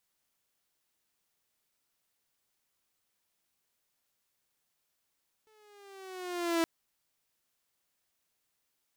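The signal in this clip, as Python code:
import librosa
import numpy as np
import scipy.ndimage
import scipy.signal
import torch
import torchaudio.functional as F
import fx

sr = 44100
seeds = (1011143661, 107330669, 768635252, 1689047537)

y = fx.riser_tone(sr, length_s=1.17, level_db=-22, wave='saw', hz=438.0, rise_st=-5.0, swell_db=39)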